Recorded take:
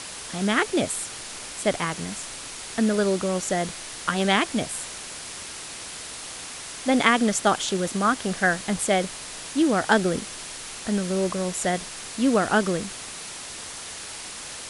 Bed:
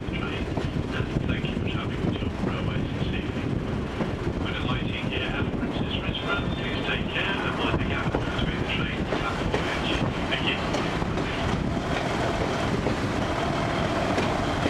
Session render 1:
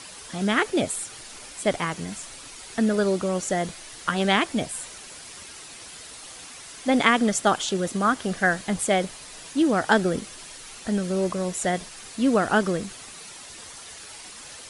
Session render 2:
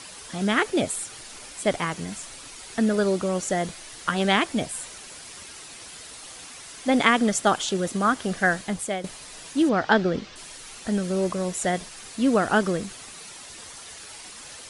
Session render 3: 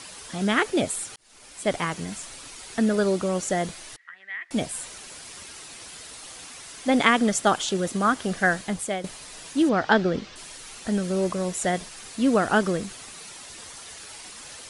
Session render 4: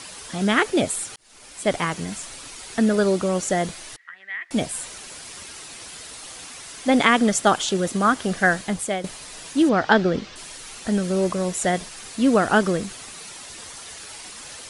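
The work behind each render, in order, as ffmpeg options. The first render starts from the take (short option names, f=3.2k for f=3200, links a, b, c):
-af "afftdn=nr=8:nf=-38"
-filter_complex "[0:a]asettb=1/sr,asplit=3[a][b][c];[a]atrim=end=9.694[d];[b]atrim=start=9.69:end=10.36,asetpts=PTS-STARTPTS,afade=t=in:d=0.004:c=qsin,afade=t=out:st=0.666:d=0.004:c=qsin,lowpass=f=5.2k:w=0.5412,lowpass=f=5.2k:w=1.3066[e];[c]atrim=start=10.356[f];[d][e]acrossfade=d=0.004:c1=hsin:c2=qsin[g];[g][f]acrossfade=d=0.004:c1=qsin:c2=hsin,asplit=2[h][i];[h]atrim=end=9.04,asetpts=PTS-STARTPTS,afade=t=out:st=8.56:d=0.48:silence=0.281838[j];[i]atrim=start=9.04,asetpts=PTS-STARTPTS,afade=t=in:d=0.004:c=hsin:silence=0.281838[k];[j][k]concat=n=2:v=0:a=1"
-filter_complex "[0:a]asettb=1/sr,asplit=3[a][b][c];[a]atrim=end=3.964[d];[b]atrim=start=3.96:end=4.51,asetpts=PTS-STARTPTS,afade=t=in:d=0.004:c=qsin,afade=t=out:st=0.546:d=0.004:c=qsin,bandpass=f=1.9k:t=q:w=19[e];[c]atrim=start=4.506[f];[d][e]acrossfade=d=0.004:c1=hsin:c2=qsin[g];[g][f]acrossfade=d=0.004:c1=qsin:c2=hsin,asplit=2[h][i];[h]atrim=end=1.16,asetpts=PTS-STARTPTS,afade=t=out:st=1.156:d=0.004:c=hsin[j];[i]atrim=start=1.16,asetpts=PTS-STARTPTS,afade=t=in:d=0.62[k];[j][k]concat=n=2:v=0:a=1"
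-af "volume=3dB,alimiter=limit=-3dB:level=0:latency=1"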